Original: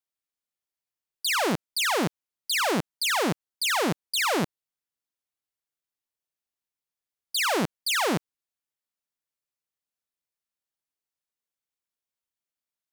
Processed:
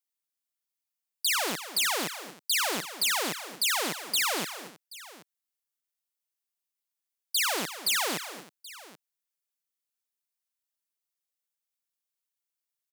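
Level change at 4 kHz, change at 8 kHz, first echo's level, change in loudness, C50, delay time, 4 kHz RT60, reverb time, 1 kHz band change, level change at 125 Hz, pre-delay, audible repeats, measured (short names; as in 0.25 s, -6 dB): -0.5 dB, +2.0 dB, -13.5 dB, -1.5 dB, none, 0.231 s, none, none, -5.0 dB, -14.0 dB, none, 3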